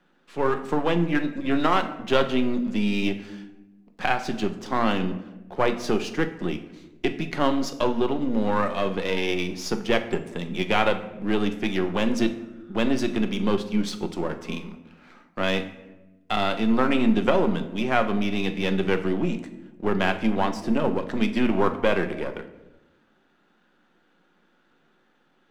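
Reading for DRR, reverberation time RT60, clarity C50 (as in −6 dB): 7.0 dB, 1.0 s, 12.0 dB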